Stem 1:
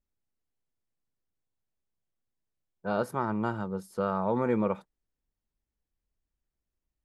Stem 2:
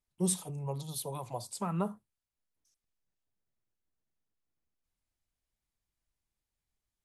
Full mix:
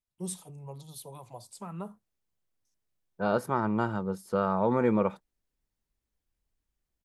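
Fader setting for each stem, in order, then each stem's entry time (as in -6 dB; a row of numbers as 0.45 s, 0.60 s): +2.0 dB, -6.5 dB; 0.35 s, 0.00 s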